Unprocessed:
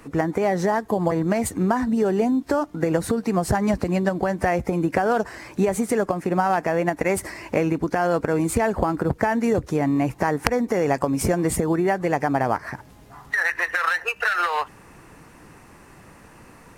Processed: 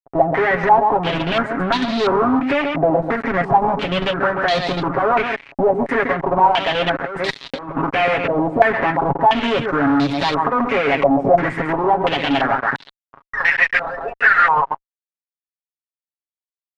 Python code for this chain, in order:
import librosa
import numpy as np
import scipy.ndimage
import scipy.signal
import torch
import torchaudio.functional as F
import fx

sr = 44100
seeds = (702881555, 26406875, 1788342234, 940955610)

y = x + 10.0 ** (-11.0 / 20.0) * np.pad(x, (int(135 * sr / 1000.0), 0))[:len(x)]
y = fx.level_steps(y, sr, step_db=11)
y = scipy.signal.sosfilt(scipy.signal.butter(4, 150.0, 'highpass', fs=sr, output='sos'), y)
y = fx.fuzz(y, sr, gain_db=33.0, gate_db=-38.0)
y = fx.over_compress(y, sr, threshold_db=-21.0, ratio=-0.5, at=(6.95, 7.81), fade=0.02)
y = y + 0.61 * np.pad(y, (int(7.3 * sr / 1000.0), 0))[:len(y)]
y = fx.filter_held_lowpass(y, sr, hz=2.9, low_hz=710.0, high_hz=3900.0)
y = y * 10.0 ** (-5.0 / 20.0)